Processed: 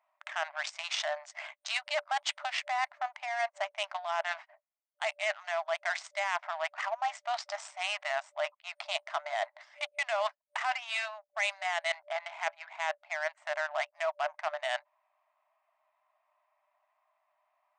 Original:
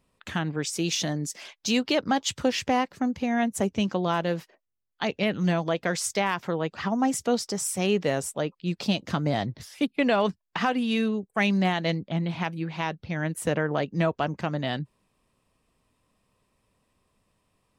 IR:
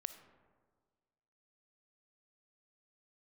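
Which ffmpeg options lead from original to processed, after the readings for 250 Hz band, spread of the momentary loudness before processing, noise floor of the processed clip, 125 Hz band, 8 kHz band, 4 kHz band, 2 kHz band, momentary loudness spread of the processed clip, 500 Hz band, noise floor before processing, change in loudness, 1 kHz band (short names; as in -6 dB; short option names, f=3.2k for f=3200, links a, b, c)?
under -40 dB, 7 LU, -80 dBFS, under -40 dB, -12.0 dB, -5.0 dB, -1.5 dB, 5 LU, -8.0 dB, -76 dBFS, -7.0 dB, -3.5 dB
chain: -af "equalizer=f=2.1k:t=o:w=0.22:g=8,adynamicsmooth=sensitivity=3:basefreq=1.1k,afftfilt=real='re*between(b*sr/4096,590,8900)':imag='im*between(b*sr/4096,590,8900)':win_size=4096:overlap=0.75,areverse,acompressor=threshold=-38dB:ratio=4,areverse,volume=7dB"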